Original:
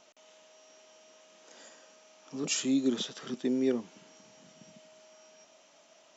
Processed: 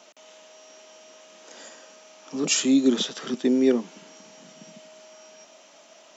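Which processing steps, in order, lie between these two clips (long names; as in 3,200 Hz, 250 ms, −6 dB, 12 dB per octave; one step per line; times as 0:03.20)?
high-pass filter 160 Hz 24 dB per octave
level +8.5 dB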